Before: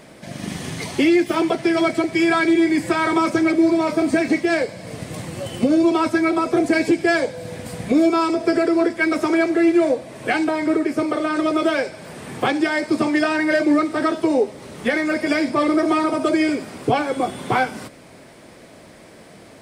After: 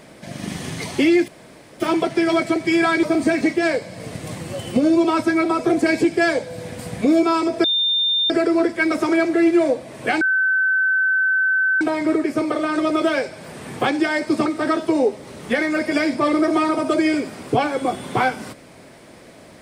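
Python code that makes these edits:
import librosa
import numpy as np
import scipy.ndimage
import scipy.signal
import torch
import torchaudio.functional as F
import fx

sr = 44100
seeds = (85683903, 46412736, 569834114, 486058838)

y = fx.edit(x, sr, fx.insert_room_tone(at_s=1.28, length_s=0.52),
    fx.cut(start_s=2.51, length_s=1.39),
    fx.insert_tone(at_s=8.51, length_s=0.66, hz=3610.0, db=-16.0),
    fx.insert_tone(at_s=10.42, length_s=1.6, hz=1530.0, db=-15.0),
    fx.cut(start_s=13.07, length_s=0.74), tone=tone)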